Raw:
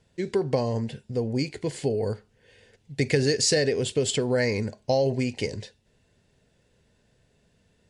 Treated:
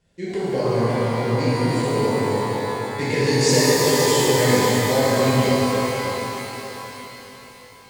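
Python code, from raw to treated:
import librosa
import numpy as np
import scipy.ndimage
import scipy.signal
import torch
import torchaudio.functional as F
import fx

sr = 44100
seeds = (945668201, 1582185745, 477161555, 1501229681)

y = fx.echo_split(x, sr, split_hz=1800.0, low_ms=293, high_ms=537, feedback_pct=52, wet_db=-7.5)
y = fx.rev_shimmer(y, sr, seeds[0], rt60_s=3.6, semitones=12, shimmer_db=-8, drr_db=-10.5)
y = F.gain(torch.from_numpy(y), -5.5).numpy()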